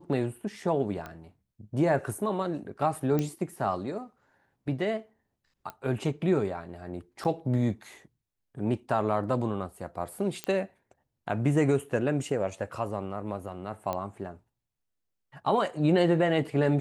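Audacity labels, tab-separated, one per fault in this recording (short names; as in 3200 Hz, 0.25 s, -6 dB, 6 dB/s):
1.060000	1.060000	pop -25 dBFS
3.190000	3.190000	pop -16 dBFS
5.700000	5.700000	pop -24 dBFS
7.240000	7.250000	gap 8 ms
10.440000	10.440000	pop -16 dBFS
13.930000	13.930000	pop -18 dBFS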